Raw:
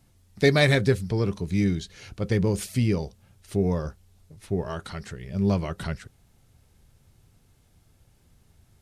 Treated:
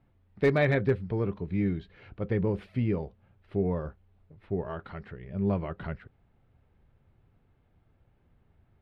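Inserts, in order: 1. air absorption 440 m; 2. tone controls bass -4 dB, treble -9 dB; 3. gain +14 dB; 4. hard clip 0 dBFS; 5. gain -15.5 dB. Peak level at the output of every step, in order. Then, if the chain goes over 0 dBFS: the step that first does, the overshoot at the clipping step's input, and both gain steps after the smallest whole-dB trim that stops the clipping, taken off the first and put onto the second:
-8.0, -9.5, +4.5, 0.0, -15.5 dBFS; step 3, 4.5 dB; step 3 +9 dB, step 5 -10.5 dB

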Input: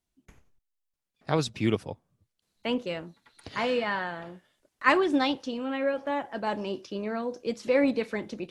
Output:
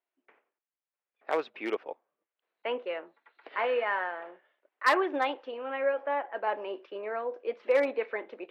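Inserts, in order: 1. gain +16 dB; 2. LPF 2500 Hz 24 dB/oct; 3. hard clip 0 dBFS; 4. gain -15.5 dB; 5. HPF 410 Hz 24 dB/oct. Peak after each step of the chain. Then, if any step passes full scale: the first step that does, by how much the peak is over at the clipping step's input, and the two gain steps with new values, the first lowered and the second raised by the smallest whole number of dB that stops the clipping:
+9.5, +9.0, 0.0, -15.5, -10.0 dBFS; step 1, 9.0 dB; step 1 +7 dB, step 4 -6.5 dB

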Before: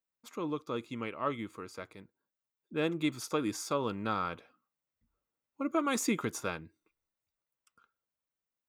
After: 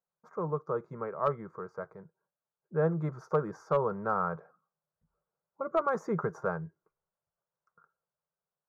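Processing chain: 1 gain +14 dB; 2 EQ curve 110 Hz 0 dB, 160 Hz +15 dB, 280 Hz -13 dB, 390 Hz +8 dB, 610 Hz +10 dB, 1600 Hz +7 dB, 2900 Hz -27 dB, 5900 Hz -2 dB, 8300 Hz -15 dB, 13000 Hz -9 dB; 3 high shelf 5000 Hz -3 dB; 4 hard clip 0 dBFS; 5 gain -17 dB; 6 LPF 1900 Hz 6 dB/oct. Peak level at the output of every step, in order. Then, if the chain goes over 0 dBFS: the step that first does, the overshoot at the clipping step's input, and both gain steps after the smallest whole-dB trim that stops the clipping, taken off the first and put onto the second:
-4.0, +4.0, +4.0, 0.0, -17.0, -17.0 dBFS; step 2, 4.0 dB; step 1 +10 dB, step 5 -13 dB

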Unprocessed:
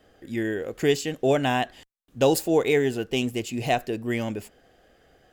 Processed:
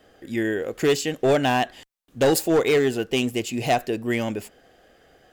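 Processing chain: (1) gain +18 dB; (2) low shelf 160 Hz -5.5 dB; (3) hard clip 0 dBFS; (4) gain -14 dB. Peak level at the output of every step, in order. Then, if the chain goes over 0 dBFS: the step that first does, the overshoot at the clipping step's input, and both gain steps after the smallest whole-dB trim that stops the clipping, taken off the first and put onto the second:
+9.0, +9.0, 0.0, -14.0 dBFS; step 1, 9.0 dB; step 1 +9 dB, step 4 -5 dB

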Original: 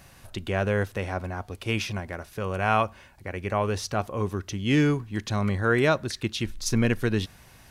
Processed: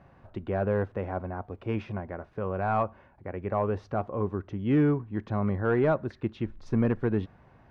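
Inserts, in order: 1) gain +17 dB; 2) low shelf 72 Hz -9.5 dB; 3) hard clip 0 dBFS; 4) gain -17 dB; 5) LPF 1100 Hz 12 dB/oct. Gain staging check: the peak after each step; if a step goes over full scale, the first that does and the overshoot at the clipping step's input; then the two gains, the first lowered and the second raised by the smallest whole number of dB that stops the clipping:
+9.0, +9.5, 0.0, -17.0, -16.5 dBFS; step 1, 9.5 dB; step 1 +7 dB, step 4 -7 dB

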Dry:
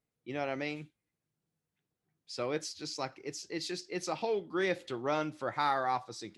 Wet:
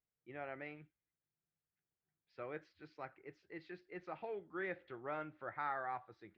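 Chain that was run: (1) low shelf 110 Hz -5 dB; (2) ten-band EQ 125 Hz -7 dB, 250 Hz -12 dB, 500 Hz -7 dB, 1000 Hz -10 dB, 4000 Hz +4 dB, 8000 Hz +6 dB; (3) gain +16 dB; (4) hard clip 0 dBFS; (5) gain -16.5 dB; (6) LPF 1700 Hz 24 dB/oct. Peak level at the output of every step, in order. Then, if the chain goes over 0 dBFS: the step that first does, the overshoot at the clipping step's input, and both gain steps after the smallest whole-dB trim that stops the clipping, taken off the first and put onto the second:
-18.0, -22.0, -6.0, -6.0, -22.5, -28.0 dBFS; no overload

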